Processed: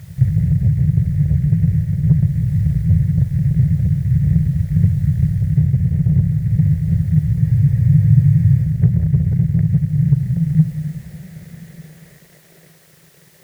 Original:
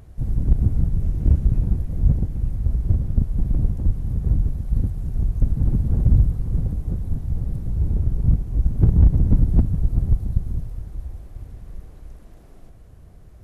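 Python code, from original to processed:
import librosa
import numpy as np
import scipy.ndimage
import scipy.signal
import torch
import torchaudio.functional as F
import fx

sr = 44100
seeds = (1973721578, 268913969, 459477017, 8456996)

p1 = fx.leveller(x, sr, passes=3)
p2 = p1 + fx.echo_single(p1, sr, ms=180, db=-13.5, dry=0)
p3 = fx.filter_sweep_highpass(p2, sr, from_hz=100.0, to_hz=330.0, start_s=9.33, end_s=12.73, q=2.7)
p4 = fx.curve_eq(p3, sr, hz=(110.0, 160.0, 260.0, 380.0, 580.0, 1100.0, 1900.0, 3000.0), db=(0, 13, -24, -10, -5, -20, 11, -8))
p5 = fx.quant_dither(p4, sr, seeds[0], bits=6, dither='triangular')
p6 = p4 + F.gain(torch.from_numpy(p5), -10.5).numpy()
p7 = fx.rider(p6, sr, range_db=10, speed_s=0.5)
p8 = fx.spec_freeze(p7, sr, seeds[1], at_s=7.42, hold_s=1.22)
y = F.gain(torch.from_numpy(p8), -9.0).numpy()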